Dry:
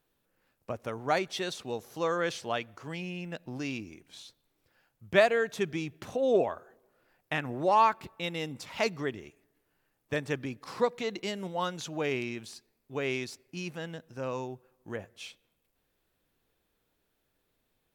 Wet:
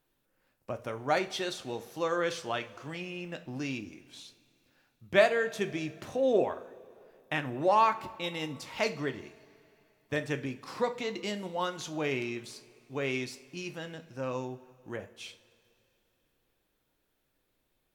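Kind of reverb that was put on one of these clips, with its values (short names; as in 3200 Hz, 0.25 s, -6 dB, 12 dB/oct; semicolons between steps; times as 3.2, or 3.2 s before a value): two-slope reverb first 0.34 s, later 2.9 s, from -20 dB, DRR 7 dB; gain -1 dB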